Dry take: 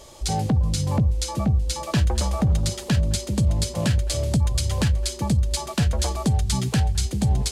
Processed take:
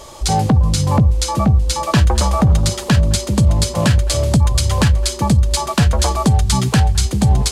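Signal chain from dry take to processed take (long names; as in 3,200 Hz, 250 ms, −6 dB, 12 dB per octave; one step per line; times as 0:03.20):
parametric band 1,100 Hz +6 dB 0.94 octaves
level +7.5 dB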